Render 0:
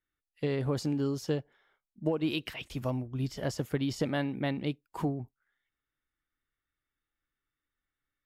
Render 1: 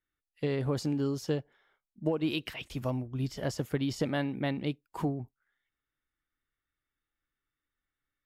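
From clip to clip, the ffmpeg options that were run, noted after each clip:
ffmpeg -i in.wav -af anull out.wav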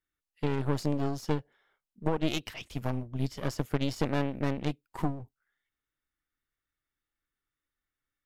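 ffmpeg -i in.wav -af "aeval=exprs='clip(val(0),-1,0.0106)':channel_layout=same,aeval=exprs='0.141*(cos(1*acos(clip(val(0)/0.141,-1,1)))-cos(1*PI/2))+0.0562*(cos(4*acos(clip(val(0)/0.141,-1,1)))-cos(4*PI/2))':channel_layout=same,volume=-1.5dB" out.wav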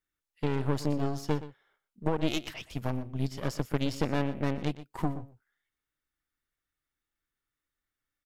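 ffmpeg -i in.wav -af "aecho=1:1:121:0.178" out.wav

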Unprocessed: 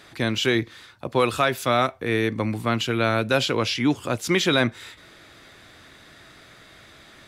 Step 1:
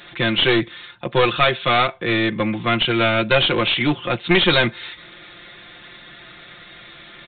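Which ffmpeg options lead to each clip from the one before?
ffmpeg -i in.wav -af "highshelf=frequency=2900:gain=12,aecho=1:1:5.7:0.82,aresample=8000,aeval=exprs='clip(val(0),-1,0.119)':channel_layout=same,aresample=44100,volume=2dB" out.wav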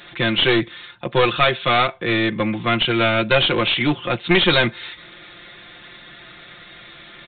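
ffmpeg -i in.wav -af anull out.wav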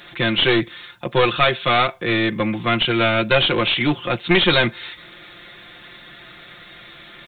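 ffmpeg -i in.wav -af "acrusher=bits=10:mix=0:aa=0.000001" out.wav

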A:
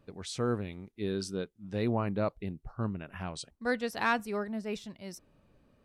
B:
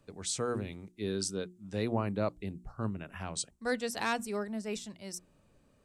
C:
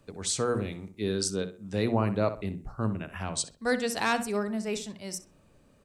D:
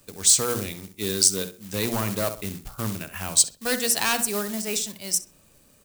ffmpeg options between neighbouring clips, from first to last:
ffmpeg -i in.wav -filter_complex "[0:a]equalizer=frequency=7800:width=1.2:gain=12,bandreject=frequency=60:width_type=h:width=6,bandreject=frequency=120:width_type=h:width=6,bandreject=frequency=180:width_type=h:width=6,bandreject=frequency=240:width_type=h:width=6,bandreject=frequency=300:width_type=h:width=6,bandreject=frequency=360:width_type=h:width=6,acrossover=split=270|920|2000[link_01][link_02][link_03][link_04];[link_03]alimiter=level_in=7dB:limit=-24dB:level=0:latency=1:release=494,volume=-7dB[link_05];[link_01][link_02][link_05][link_04]amix=inputs=4:normalize=0,volume=-1dB" out.wav
ffmpeg -i in.wav -filter_complex "[0:a]asplit=2[link_01][link_02];[link_02]adelay=64,lowpass=frequency=2800:poles=1,volume=-11dB,asplit=2[link_03][link_04];[link_04]adelay=64,lowpass=frequency=2800:poles=1,volume=0.33,asplit=2[link_05][link_06];[link_06]adelay=64,lowpass=frequency=2800:poles=1,volume=0.33,asplit=2[link_07][link_08];[link_08]adelay=64,lowpass=frequency=2800:poles=1,volume=0.33[link_09];[link_01][link_03][link_05][link_07][link_09]amix=inputs=5:normalize=0,volume=5dB" out.wav
ffmpeg -i in.wav -af "asoftclip=type=hard:threshold=-21.5dB,acrusher=bits=4:mode=log:mix=0:aa=0.000001,crystalizer=i=4.5:c=0" out.wav

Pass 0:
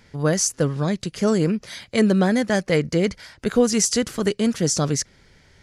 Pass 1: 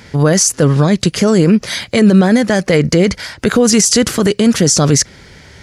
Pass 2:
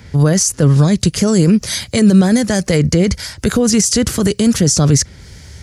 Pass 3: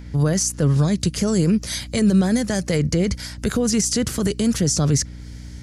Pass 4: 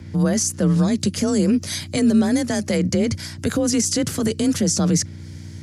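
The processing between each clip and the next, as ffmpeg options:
ffmpeg -i in.wav -af "highpass=46,alimiter=level_in=16.5dB:limit=-1dB:release=50:level=0:latency=1,volume=-1dB" out.wav
ffmpeg -i in.wav -filter_complex "[0:a]equalizer=frequency=67:width=0.55:gain=14,acrossover=split=370|5100[link_01][link_02][link_03];[link_03]dynaudnorm=framelen=110:gausssize=3:maxgain=13dB[link_04];[link_01][link_02][link_04]amix=inputs=3:normalize=0,volume=-5.5dB" out.wav
ffmpeg -i in.wav -af "aeval=exprs='val(0)+0.0398*(sin(2*PI*60*n/s)+sin(2*PI*2*60*n/s)/2+sin(2*PI*3*60*n/s)/3+sin(2*PI*4*60*n/s)/4+sin(2*PI*5*60*n/s)/5)':channel_layout=same,volume=-7dB" out.wav
ffmpeg -i in.wav -af "afreqshift=32" out.wav

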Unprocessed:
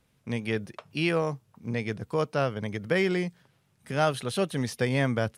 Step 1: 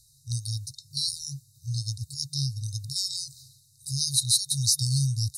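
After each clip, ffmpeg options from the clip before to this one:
ffmpeg -i in.wav -af "afftfilt=real='re*(1-between(b*sr/4096,140,3700))':imag='im*(1-between(b*sr/4096,140,3700))':win_size=4096:overlap=0.75,equalizer=frequency=7900:width=0.32:gain=14,areverse,acompressor=mode=upward:threshold=-47dB:ratio=2.5,areverse,volume=5dB" out.wav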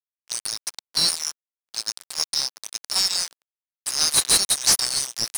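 ffmpeg -i in.wav -filter_complex "[0:a]aderivative,aeval=exprs='sgn(val(0))*max(abs(val(0))-0.0112,0)':channel_layout=same,asplit=2[link_01][link_02];[link_02]highpass=frequency=720:poles=1,volume=23dB,asoftclip=type=tanh:threshold=-8dB[link_03];[link_01][link_03]amix=inputs=2:normalize=0,lowpass=frequency=2500:poles=1,volume=-6dB,volume=8dB" out.wav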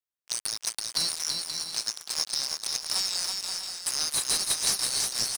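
ffmpeg -i in.wav -filter_complex "[0:a]acompressor=threshold=-25dB:ratio=6,asplit=2[link_01][link_02];[link_02]aecho=0:1:330|528|646.8|718.1|760.8:0.631|0.398|0.251|0.158|0.1[link_03];[link_01][link_03]amix=inputs=2:normalize=0" out.wav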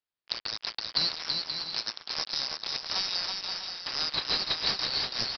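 ffmpeg -i in.wav -af "aresample=11025,aresample=44100,volume=2.5dB" out.wav

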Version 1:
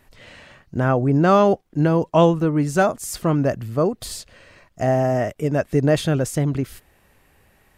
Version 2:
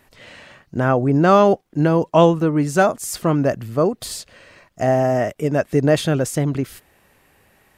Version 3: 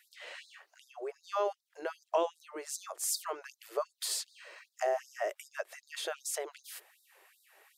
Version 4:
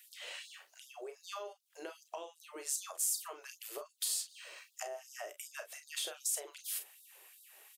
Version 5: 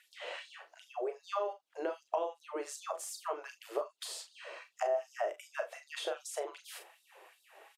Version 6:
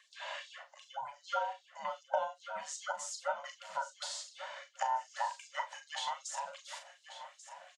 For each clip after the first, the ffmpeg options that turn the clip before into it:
ffmpeg -i in.wav -af "lowshelf=frequency=76:gain=-11.5,volume=2.5dB" out.wav
ffmpeg -i in.wav -af "acompressor=threshold=-22dB:ratio=6,afftfilt=real='re*gte(b*sr/1024,310*pow(3700/310,0.5+0.5*sin(2*PI*2.6*pts/sr)))':imag='im*gte(b*sr/1024,310*pow(3700/310,0.5+0.5*sin(2*PI*2.6*pts/sr)))':win_size=1024:overlap=0.75,volume=-4dB" out.wav
ffmpeg -i in.wav -af "acompressor=threshold=-40dB:ratio=5,aexciter=amount=2.8:drive=3.2:freq=2600,aecho=1:1:34|46:0.335|0.2,volume=-3dB" out.wav
ffmpeg -i in.wav -filter_complex "[0:a]bandpass=frequency=630:width_type=q:width=0.87:csg=0,asplit=2[link_01][link_02];[link_02]adelay=40,volume=-13dB[link_03];[link_01][link_03]amix=inputs=2:normalize=0,volume=11.5dB" out.wav
ffmpeg -i in.wav -af "afftfilt=real='real(if(between(b,1,1008),(2*floor((b-1)/24)+1)*24-b,b),0)':imag='imag(if(between(b,1,1008),(2*floor((b-1)/24)+1)*24-b,b),0)*if(between(b,1,1008),-1,1)':win_size=2048:overlap=0.75,highpass=frequency=370:width=0.5412,highpass=frequency=370:width=1.3066,equalizer=frequency=580:width_type=q:width=4:gain=6,equalizer=frequency=880:width_type=q:width=4:gain=-5,equalizer=frequency=2500:width_type=q:width=4:gain=-4,equalizer=frequency=6700:width_type=q:width=4:gain=5,lowpass=frequency=7500:width=0.5412,lowpass=frequency=7500:width=1.3066,aecho=1:1:1138|2276|3414:0.237|0.0759|0.0243,volume=2dB" out.wav

